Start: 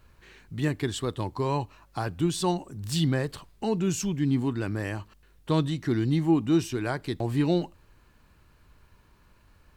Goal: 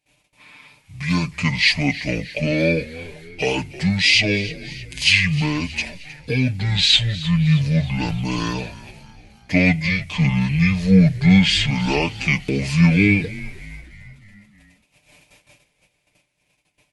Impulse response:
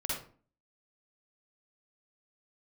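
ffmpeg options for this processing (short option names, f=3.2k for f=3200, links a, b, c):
-filter_complex "[0:a]agate=range=-19dB:threshold=-55dB:ratio=16:detection=peak,highpass=170,highshelf=f=3.2k:t=q:w=3:g=8.5,aecho=1:1:3.9:0.82,dynaudnorm=f=110:g=11:m=9dB,asplit=6[a][b][c][d][e][f];[b]adelay=180,afreqshift=-130,volume=-17dB[g];[c]adelay=360,afreqshift=-260,volume=-22.2dB[h];[d]adelay=540,afreqshift=-390,volume=-27.4dB[i];[e]adelay=720,afreqshift=-520,volume=-32.6dB[j];[f]adelay=900,afreqshift=-650,volume=-37.8dB[k];[a][g][h][i][j][k]amix=inputs=6:normalize=0,asetrate=25442,aresample=44100"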